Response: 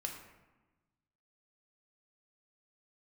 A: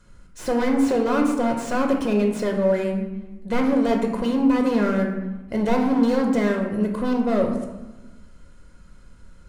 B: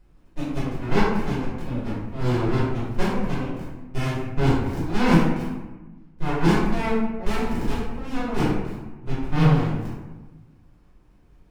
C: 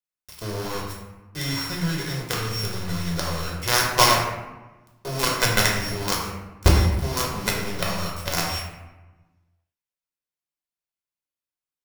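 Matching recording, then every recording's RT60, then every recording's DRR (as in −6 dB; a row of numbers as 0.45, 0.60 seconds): A; 1.1, 1.1, 1.1 seconds; 1.5, −11.5, −2.5 decibels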